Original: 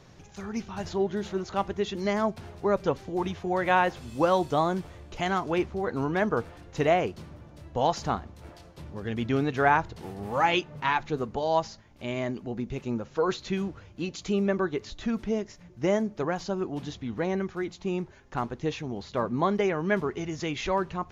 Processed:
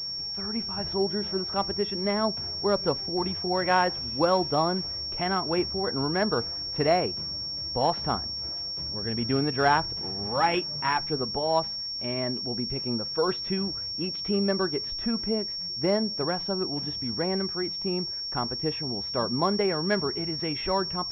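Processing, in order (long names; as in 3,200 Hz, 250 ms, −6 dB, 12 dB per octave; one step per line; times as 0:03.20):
switching amplifier with a slow clock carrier 5,500 Hz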